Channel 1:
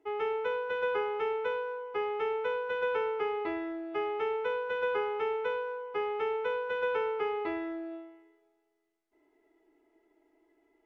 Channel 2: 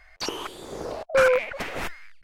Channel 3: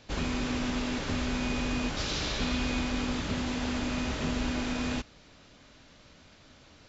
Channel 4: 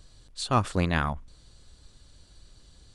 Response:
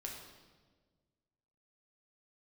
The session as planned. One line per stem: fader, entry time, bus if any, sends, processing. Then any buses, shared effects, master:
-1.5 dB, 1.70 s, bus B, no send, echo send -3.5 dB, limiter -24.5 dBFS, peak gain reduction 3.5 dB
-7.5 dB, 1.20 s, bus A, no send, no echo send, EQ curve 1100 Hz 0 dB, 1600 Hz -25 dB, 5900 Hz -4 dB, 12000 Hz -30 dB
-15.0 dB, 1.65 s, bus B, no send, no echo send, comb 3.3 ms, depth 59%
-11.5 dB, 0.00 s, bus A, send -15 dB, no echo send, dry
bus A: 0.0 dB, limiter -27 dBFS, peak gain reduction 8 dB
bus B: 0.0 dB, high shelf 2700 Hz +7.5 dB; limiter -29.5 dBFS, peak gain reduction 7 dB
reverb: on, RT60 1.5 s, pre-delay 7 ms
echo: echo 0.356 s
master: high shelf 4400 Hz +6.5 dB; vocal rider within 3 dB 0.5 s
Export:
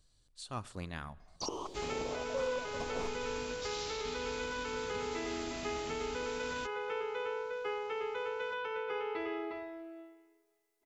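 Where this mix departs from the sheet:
stem 1 -1.5 dB -> -7.5 dB; stem 3: missing comb 3.3 ms, depth 59%; stem 4 -11.5 dB -> -21.0 dB

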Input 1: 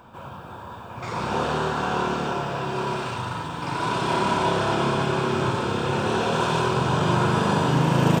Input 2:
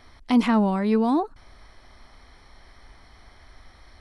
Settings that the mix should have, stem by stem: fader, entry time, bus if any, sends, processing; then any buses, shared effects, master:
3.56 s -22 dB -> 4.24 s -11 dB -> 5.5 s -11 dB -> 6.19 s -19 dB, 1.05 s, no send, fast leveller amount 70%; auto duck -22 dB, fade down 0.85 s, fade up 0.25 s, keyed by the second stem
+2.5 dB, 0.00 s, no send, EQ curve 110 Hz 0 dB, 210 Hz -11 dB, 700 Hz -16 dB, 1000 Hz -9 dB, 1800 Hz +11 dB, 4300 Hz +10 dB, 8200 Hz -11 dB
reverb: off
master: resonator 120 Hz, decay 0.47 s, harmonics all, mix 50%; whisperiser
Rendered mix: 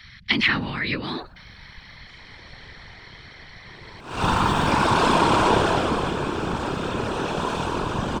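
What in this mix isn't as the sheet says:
stem 1 -22.0 dB -> -10.5 dB; master: missing resonator 120 Hz, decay 0.47 s, harmonics all, mix 50%

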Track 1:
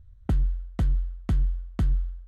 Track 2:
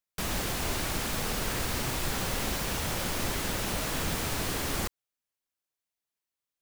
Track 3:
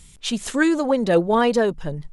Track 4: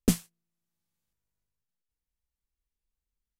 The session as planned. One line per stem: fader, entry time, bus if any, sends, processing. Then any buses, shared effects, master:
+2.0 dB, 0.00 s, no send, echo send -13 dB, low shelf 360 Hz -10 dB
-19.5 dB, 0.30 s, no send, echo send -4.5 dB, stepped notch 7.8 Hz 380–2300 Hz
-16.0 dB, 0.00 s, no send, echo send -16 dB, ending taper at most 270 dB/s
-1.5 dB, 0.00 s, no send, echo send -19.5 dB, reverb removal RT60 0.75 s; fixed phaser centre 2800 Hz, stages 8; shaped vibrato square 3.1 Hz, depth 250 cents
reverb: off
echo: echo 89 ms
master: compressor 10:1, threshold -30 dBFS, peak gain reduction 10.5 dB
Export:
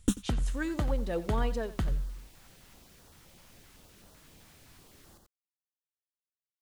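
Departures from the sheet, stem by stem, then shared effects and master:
stem 2 -19.5 dB -> -26.0 dB; master: missing compressor 10:1, threshold -30 dBFS, peak gain reduction 10.5 dB

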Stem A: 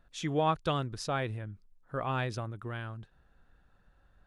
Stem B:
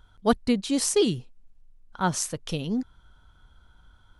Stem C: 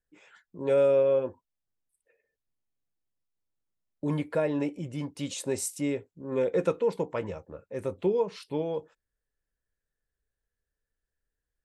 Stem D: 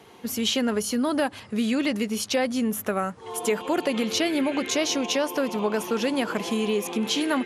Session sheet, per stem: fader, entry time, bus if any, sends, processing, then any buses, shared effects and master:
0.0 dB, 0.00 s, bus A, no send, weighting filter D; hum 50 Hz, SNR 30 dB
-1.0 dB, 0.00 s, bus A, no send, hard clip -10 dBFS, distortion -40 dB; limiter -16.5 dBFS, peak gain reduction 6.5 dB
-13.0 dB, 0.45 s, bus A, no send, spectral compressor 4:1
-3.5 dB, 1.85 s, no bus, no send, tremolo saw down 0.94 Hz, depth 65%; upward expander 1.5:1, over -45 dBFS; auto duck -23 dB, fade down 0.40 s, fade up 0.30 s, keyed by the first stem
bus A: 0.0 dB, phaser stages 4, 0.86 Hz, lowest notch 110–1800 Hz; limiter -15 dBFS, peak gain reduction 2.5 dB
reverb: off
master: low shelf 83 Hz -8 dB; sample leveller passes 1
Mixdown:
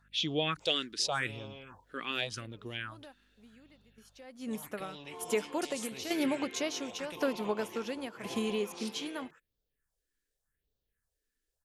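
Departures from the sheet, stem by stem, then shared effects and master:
stem B: muted; master: missing sample leveller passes 1

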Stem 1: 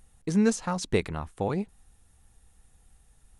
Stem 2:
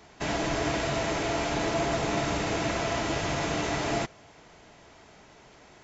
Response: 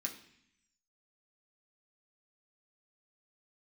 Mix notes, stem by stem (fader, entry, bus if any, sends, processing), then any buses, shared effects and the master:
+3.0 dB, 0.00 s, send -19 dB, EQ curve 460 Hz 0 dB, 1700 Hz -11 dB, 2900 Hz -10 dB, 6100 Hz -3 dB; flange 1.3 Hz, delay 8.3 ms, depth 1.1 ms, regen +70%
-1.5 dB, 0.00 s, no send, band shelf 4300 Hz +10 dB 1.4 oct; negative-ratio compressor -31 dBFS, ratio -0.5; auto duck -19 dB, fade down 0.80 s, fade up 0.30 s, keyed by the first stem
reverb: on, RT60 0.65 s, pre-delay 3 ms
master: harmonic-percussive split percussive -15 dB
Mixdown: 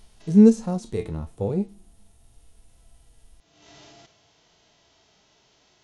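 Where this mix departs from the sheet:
stem 1 +3.0 dB -> +12.0 dB; stem 2 -1.5 dB -> -13.0 dB

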